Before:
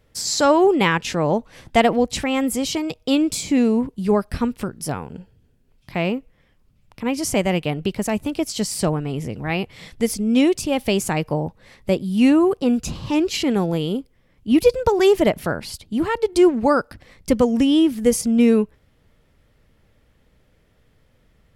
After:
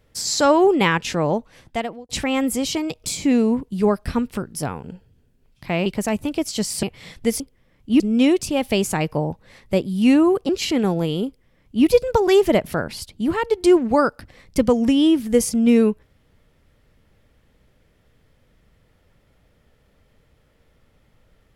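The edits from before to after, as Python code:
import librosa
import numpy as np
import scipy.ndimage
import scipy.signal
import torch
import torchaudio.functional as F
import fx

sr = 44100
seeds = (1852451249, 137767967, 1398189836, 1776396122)

y = fx.edit(x, sr, fx.fade_out_span(start_s=1.19, length_s=0.9),
    fx.cut(start_s=3.04, length_s=0.26),
    fx.cut(start_s=6.12, length_s=1.75),
    fx.cut(start_s=8.84, length_s=0.75),
    fx.cut(start_s=12.65, length_s=0.56),
    fx.duplicate(start_s=13.98, length_s=0.6, to_s=10.16), tone=tone)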